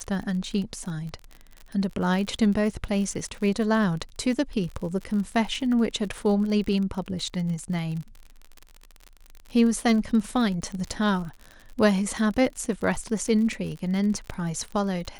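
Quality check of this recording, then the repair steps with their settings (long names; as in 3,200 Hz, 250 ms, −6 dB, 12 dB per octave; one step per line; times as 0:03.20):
surface crackle 44 per second −32 dBFS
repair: click removal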